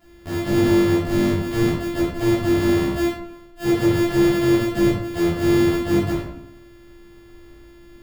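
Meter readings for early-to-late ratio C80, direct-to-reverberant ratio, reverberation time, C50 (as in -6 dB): 5.0 dB, -11.0 dB, 0.75 s, 1.0 dB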